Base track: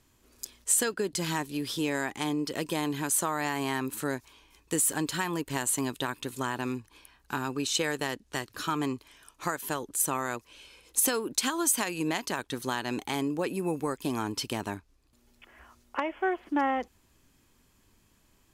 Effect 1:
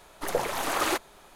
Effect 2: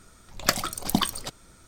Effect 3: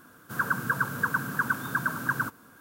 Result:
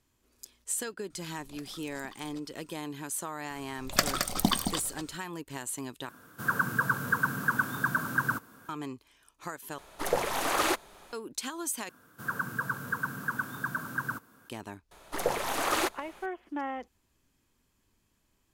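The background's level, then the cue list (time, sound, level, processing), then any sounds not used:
base track -8 dB
1.10 s: add 2 -13.5 dB + compression, threshold -34 dBFS
3.50 s: add 2 -2.5 dB + multi-tap echo 85/111/219 ms -17/-19/-7 dB
6.09 s: replace with 3 -0.5 dB
9.78 s: replace with 1 -0.5 dB
11.89 s: replace with 3 -5.5 dB
14.91 s: add 1 -1.5 dB

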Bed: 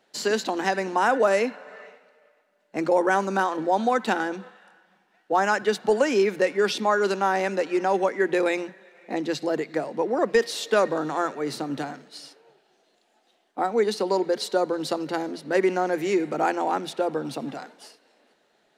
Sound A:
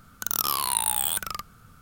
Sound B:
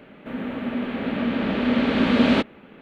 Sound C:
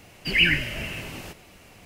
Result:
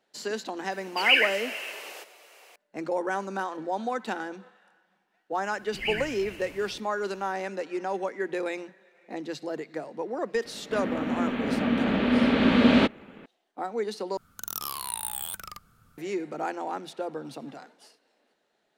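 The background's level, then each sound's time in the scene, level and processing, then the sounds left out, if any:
bed -8 dB
0.71 s: add C -1 dB + steep high-pass 410 Hz
5.47 s: add C -12 dB
10.45 s: add B -1 dB
14.17 s: replace with A -8.5 dB

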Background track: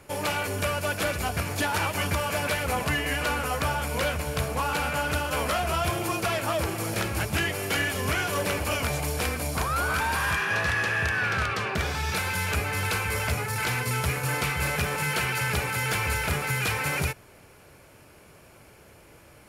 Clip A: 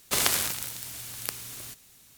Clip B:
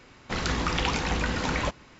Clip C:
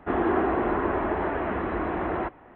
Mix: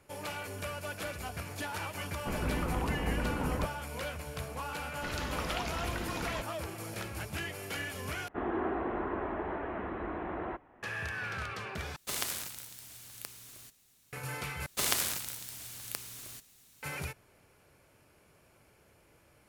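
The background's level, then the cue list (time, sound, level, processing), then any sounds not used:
background track -11.5 dB
1.96 s: add B -3.5 dB + Bessel low-pass 740 Hz
4.72 s: add B -10.5 dB
8.28 s: replace with C -9.5 dB
11.96 s: replace with A -10.5 dB
14.66 s: replace with A -5.5 dB

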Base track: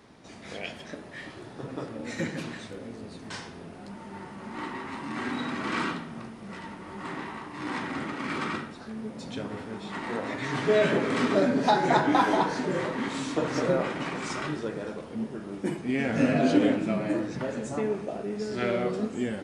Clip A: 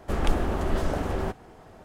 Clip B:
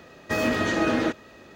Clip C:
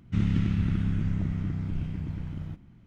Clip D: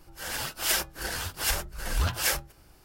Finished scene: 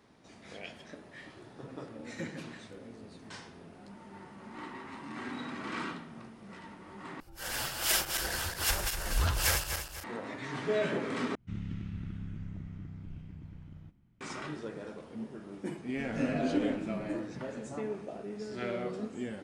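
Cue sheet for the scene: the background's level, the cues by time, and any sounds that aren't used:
base track -8 dB
7.20 s: replace with D -3 dB + backward echo that repeats 122 ms, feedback 61%, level -5 dB
11.35 s: replace with C -13.5 dB
15.88 s: add A -16.5 dB + compression 12:1, threshold -34 dBFS
not used: B

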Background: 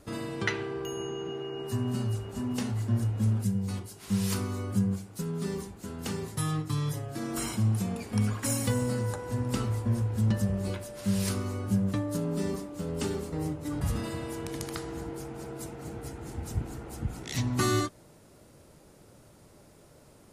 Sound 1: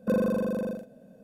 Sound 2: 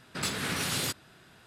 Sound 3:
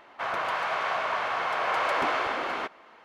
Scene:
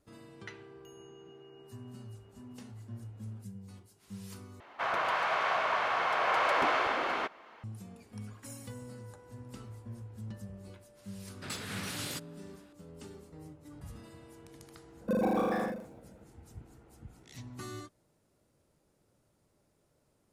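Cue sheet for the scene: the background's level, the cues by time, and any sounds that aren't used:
background -17 dB
4.60 s: replace with 3 -1.5 dB
11.27 s: add 2 -8 dB
15.01 s: add 1 -5 dB + ever faster or slower copies 161 ms, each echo +7 st, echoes 3

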